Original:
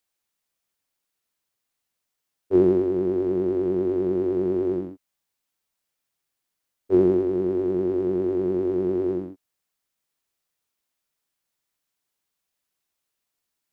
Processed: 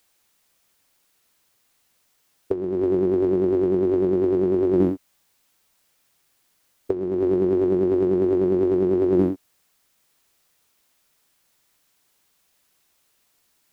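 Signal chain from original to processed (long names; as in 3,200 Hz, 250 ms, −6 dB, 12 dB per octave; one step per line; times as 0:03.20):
compressor whose output falls as the input rises −29 dBFS, ratio −1
level +8.5 dB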